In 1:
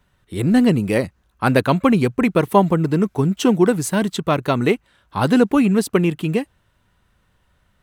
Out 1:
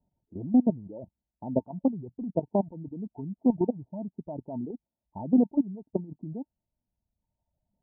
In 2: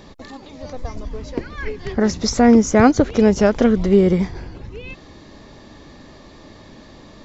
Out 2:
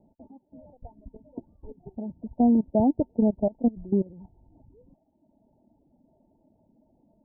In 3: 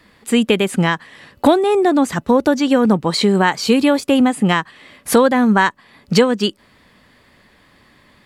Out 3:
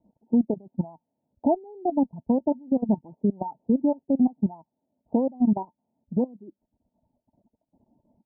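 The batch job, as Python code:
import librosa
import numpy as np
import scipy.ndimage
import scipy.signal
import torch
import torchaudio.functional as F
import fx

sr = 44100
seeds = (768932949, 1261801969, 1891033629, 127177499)

y = fx.level_steps(x, sr, step_db=13)
y = fx.cheby_harmonics(y, sr, harmonics=(3, 7), levels_db=(-30, -36), full_scale_db=-3.0)
y = fx.dereverb_blind(y, sr, rt60_s=1.4)
y = scipy.signal.sosfilt(scipy.signal.cheby1(6, 9, 930.0, 'lowpass', fs=sr, output='sos'), y)
y = F.gain(torch.from_numpy(y), -2.0).numpy()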